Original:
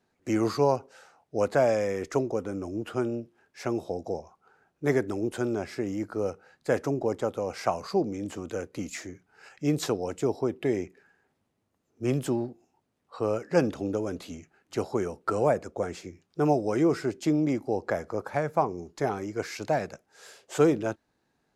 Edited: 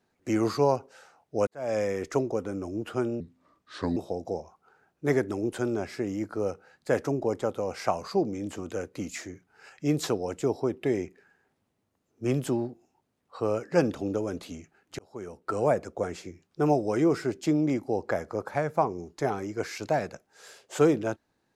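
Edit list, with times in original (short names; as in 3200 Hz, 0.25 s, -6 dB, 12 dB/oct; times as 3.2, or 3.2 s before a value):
1.47–1.78 fade in quadratic
3.2–3.76 speed 73%
14.78–15.51 fade in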